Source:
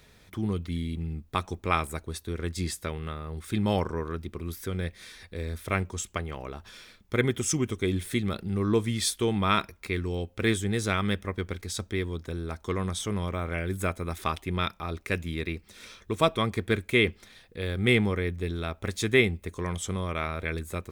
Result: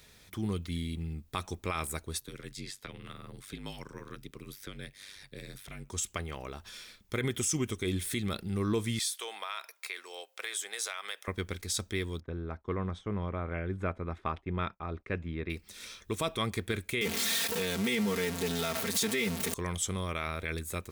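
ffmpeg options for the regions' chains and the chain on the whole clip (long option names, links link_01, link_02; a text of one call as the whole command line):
ffmpeg -i in.wav -filter_complex "[0:a]asettb=1/sr,asplit=3[link_01][link_02][link_03];[link_01]atrim=end=2.204[link_04];[link_02]atrim=start=2.2:end=5.9,asetpts=PTS-STARTPTS,afade=type=in:duration=0.004:curve=qsin,afade=type=out:start_time=3.696:duration=0.004:curve=qsin,acrossover=split=95|350|1500|5000[link_05][link_06][link_07][link_08][link_09];[link_05]acompressor=threshold=-51dB:ratio=3[link_10];[link_06]acompressor=threshold=-40dB:ratio=3[link_11];[link_07]acompressor=threshold=-46dB:ratio=3[link_12];[link_08]acompressor=threshold=-42dB:ratio=3[link_13];[link_09]acompressor=threshold=-56dB:ratio=3[link_14];[link_10][link_11][link_12][link_13][link_14]amix=inputs=5:normalize=0,aeval=exprs='val(0)*sin(2*PI*49*n/s)':channel_layout=same[link_15];[link_03]atrim=start=5.896[link_16];[link_04][link_15]acrossfade=duration=0.004:curve1=hsin:curve2=qsin[link_17];[link_17][link_16]acrossfade=duration=0.004:curve1=qsin:curve2=hsin,asettb=1/sr,asplit=3[link_18][link_19][link_20];[link_18]atrim=end=8.994[link_21];[link_19]atrim=start=8.99:end=11.28,asetpts=PTS-STARTPTS,afade=type=in:duration=0.004:curve=qsin,afade=type=out:start_time=2.286:duration=0.004:curve=qsin,highpass=frequency=580:width=0.5412,highpass=frequency=580:width=1.3066,acompressor=threshold=-32dB:ratio=6:attack=3.2:release=140:knee=1:detection=peak[link_22];[link_20]atrim=start=11.276[link_23];[link_21][link_22]acrossfade=duration=0.004:curve1=hsin:curve2=qsin[link_24];[link_24][link_23]acrossfade=duration=0.004:curve1=qsin:curve2=hsin,asettb=1/sr,asplit=3[link_25][link_26][link_27];[link_25]atrim=end=12.204[link_28];[link_26]atrim=start=12.2:end=15.5,asetpts=PTS-STARTPTS,afade=type=in:duration=0.004:curve=qsin,afade=type=out:start_time=3.296:duration=0.004:curve=qsin,lowpass=1500,agate=range=-33dB:threshold=-44dB:ratio=3:release=100:detection=peak[link_29];[link_27]atrim=start=15.496[link_30];[link_28][link_29]acrossfade=duration=0.004:curve1=hsin:curve2=qsin[link_31];[link_31][link_30]acrossfade=duration=0.004:curve1=qsin:curve2=hsin,asettb=1/sr,asplit=3[link_32][link_33][link_34];[link_32]atrim=end=17.014[link_35];[link_33]atrim=start=17.01:end=19.54,asetpts=PTS-STARTPTS,afade=type=in:duration=0.004:curve=qsin,afade=type=out:start_time=2.526:duration=0.004:curve=qsin,aeval=exprs='val(0)+0.5*0.0473*sgn(val(0))':channel_layout=same,highpass=frequency=110:width=0.5412,highpass=frequency=110:width=1.3066,aecho=1:1:4.4:0.83,atrim=end_sample=111573[link_36];[link_34]atrim=start=19.536[link_37];[link_35][link_36]acrossfade=duration=0.004:curve1=hsin:curve2=qsin[link_38];[link_38][link_37]acrossfade=duration=0.004:curve1=qsin:curve2=hsin,highshelf=frequency=2800:gain=9,alimiter=limit=-16.5dB:level=0:latency=1:release=38,volume=-4dB" out.wav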